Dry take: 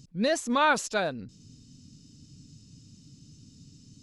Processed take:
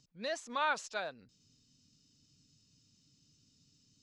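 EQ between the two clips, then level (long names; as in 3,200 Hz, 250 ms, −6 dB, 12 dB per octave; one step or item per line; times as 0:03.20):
three-way crossover with the lows and the highs turned down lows −12 dB, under 530 Hz, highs −20 dB, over 7,700 Hz
−8.5 dB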